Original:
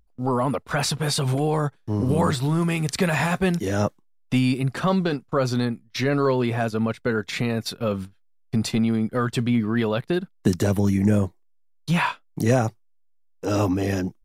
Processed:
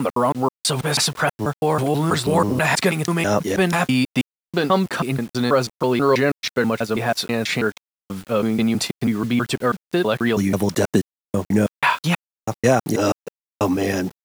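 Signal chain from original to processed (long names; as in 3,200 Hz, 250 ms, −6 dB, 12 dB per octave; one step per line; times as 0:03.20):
slices reordered back to front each 162 ms, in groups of 4
high-pass filter 270 Hz 6 dB per octave
bit-depth reduction 8 bits, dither none
level +6 dB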